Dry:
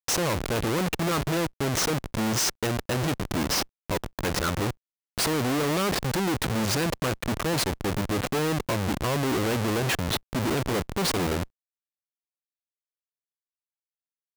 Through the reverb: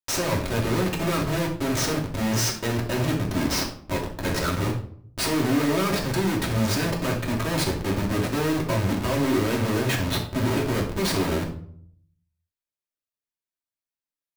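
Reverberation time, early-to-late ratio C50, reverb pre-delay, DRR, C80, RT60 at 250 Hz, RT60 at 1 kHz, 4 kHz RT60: 0.60 s, 7.0 dB, 3 ms, −3.0 dB, 12.0 dB, 0.80 s, 0.55 s, 0.40 s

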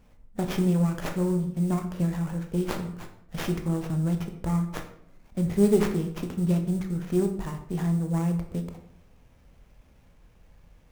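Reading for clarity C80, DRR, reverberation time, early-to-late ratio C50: 12.0 dB, 5.0 dB, 0.65 s, 9.0 dB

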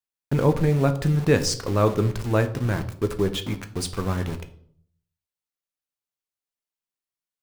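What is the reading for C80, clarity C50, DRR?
17.0 dB, 14.0 dB, 7.5 dB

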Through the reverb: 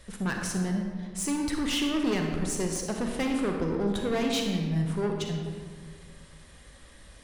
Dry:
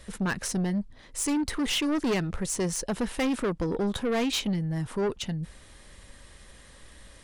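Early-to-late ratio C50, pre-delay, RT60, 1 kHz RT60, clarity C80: 3.0 dB, 35 ms, 1.8 s, 1.7 s, 4.5 dB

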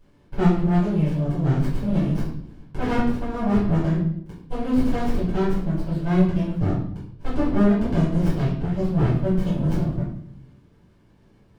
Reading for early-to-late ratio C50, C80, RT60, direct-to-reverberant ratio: 3.5 dB, 7.0 dB, 0.65 s, −11.0 dB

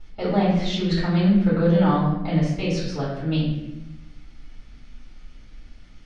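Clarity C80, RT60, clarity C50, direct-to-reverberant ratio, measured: 4.5 dB, 0.95 s, 1.5 dB, −10.0 dB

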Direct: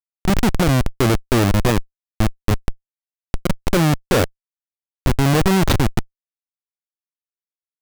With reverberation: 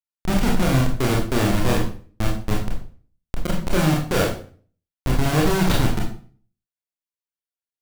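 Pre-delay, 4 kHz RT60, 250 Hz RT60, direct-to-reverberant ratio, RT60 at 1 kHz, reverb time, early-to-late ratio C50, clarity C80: 24 ms, 0.35 s, 0.50 s, −2.0 dB, 0.40 s, 0.45 s, 5.5 dB, 10.0 dB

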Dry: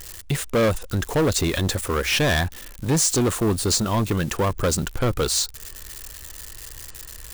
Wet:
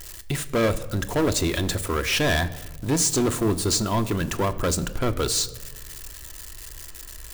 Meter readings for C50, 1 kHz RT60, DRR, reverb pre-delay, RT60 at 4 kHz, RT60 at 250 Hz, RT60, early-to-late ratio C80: 16.0 dB, 1.1 s, 9.0 dB, 3 ms, 0.70 s, 1.5 s, 1.2 s, 17.5 dB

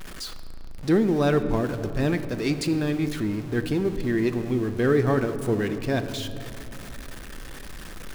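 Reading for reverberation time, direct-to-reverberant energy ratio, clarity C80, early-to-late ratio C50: 2.7 s, 8.0 dB, 11.5 dB, 10.5 dB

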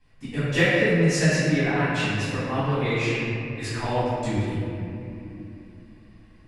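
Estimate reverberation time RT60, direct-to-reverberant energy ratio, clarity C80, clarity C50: 2.9 s, −15.0 dB, −2.0 dB, −4.5 dB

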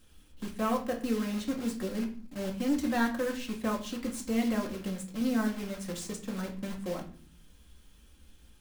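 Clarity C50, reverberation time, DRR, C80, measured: 10.5 dB, 0.50 s, 0.5 dB, 15.0 dB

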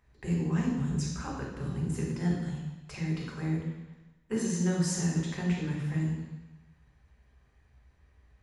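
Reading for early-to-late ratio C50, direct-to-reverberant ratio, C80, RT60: 2.0 dB, −2.5 dB, 4.5 dB, 1.1 s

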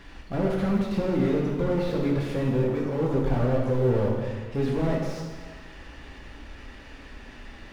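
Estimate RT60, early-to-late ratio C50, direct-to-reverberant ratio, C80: 1.6 s, 1.5 dB, −3.0 dB, 3.0 dB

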